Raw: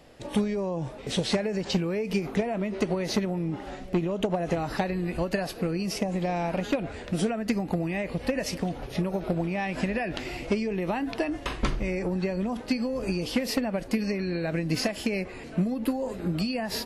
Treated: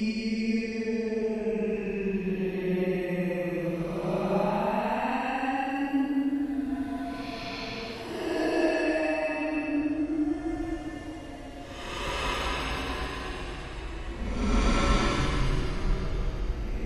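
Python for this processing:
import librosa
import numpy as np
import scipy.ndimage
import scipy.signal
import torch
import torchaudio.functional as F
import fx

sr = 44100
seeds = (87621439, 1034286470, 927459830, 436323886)

y = fx.paulstretch(x, sr, seeds[0], factor=14.0, window_s=0.1, from_s=10.59)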